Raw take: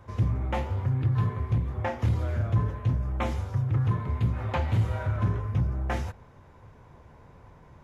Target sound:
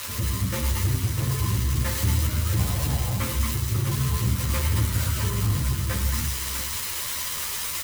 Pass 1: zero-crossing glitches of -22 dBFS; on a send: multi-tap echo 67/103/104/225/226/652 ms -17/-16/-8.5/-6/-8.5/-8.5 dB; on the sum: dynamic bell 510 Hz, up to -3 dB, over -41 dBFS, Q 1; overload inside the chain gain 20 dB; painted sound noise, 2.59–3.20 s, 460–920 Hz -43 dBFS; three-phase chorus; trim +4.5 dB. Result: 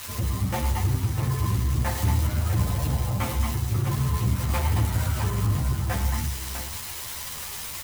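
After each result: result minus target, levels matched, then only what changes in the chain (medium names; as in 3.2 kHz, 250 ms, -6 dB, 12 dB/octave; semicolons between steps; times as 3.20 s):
zero-crossing glitches: distortion -7 dB; 1 kHz band +3.5 dB
change: zero-crossing glitches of -14.5 dBFS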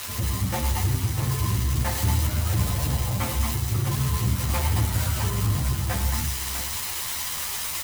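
1 kHz band +3.0 dB
add after dynamic bell: Butterworth band-stop 750 Hz, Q 2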